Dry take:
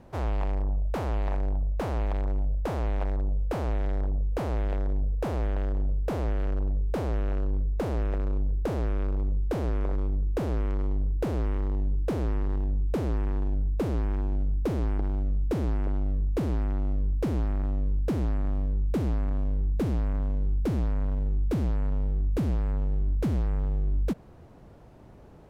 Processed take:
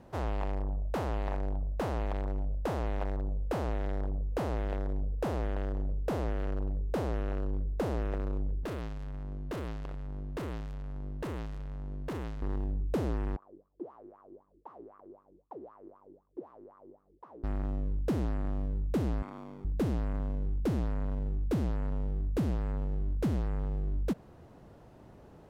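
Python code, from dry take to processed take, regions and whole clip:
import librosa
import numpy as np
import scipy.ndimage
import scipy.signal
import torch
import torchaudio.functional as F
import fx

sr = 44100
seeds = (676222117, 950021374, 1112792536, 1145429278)

y = fx.chain(x, sr, fx.comb(ms=3.0, depth=0.35),
    fx.clip_hard(threshold_db=-31.5), at=(8.63, 12.42))
y = fx.chain(y, sr, fx.lower_of_two(delay_ms=0.53),
    fx.wah_lfo(hz=3.9, low_hz=330.0, high_hz=1200.0, q=11.0), at=(13.36, 17.44))
y = fx.chain(y, sr, fx.highpass(hz=350.0, slope=12),
    fx.comb(ms=0.9, depth=0.49),
    fx.env_flatten(amount_pct=50), at=(19.22, 19.65))
y = fx.low_shelf(y, sr, hz=70.0, db=-7.0)
y = fx.notch(y, sr, hz=2300.0, q=25.0)
y = y * 10.0 ** (-1.5 / 20.0)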